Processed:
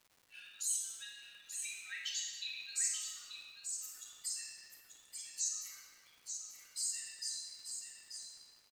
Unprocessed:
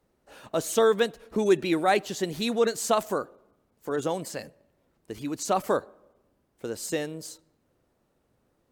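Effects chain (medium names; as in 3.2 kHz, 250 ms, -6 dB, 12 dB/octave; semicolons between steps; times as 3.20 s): spectral contrast enhancement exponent 2.2; steep high-pass 2 kHz 48 dB/octave; simulated room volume 1700 m³, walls mixed, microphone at 3.6 m; compression 1.5:1, threshold -56 dBFS, peak gain reduction 11 dB; crackle 410 per s -60 dBFS; delay 886 ms -7 dB; trim +5.5 dB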